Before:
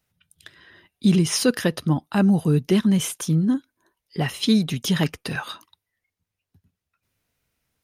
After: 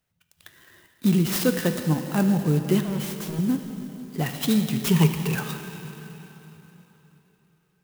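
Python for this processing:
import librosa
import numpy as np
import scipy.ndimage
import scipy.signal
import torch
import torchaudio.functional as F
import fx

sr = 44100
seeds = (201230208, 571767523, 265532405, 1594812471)

y = fx.clip_hard(x, sr, threshold_db=-29.0, at=(2.84, 3.39))
y = fx.ripple_eq(y, sr, per_octave=0.75, db=16, at=(4.82, 5.35))
y = fx.rev_plate(y, sr, seeds[0], rt60_s=3.7, hf_ratio=0.9, predelay_ms=0, drr_db=5.5)
y = fx.clock_jitter(y, sr, seeds[1], jitter_ms=0.043)
y = y * librosa.db_to_amplitude(-3.0)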